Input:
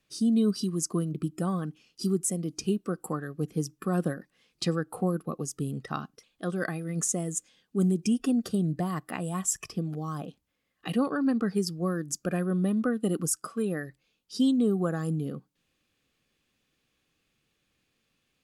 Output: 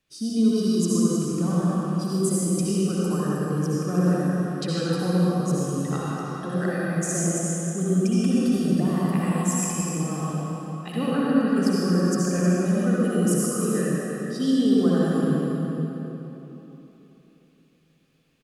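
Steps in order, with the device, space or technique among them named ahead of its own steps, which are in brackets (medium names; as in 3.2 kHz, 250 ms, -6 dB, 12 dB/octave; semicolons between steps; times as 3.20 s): cave (delay 313 ms -10.5 dB; reverberation RT60 3.5 s, pre-delay 59 ms, DRR -7.5 dB); trim -3 dB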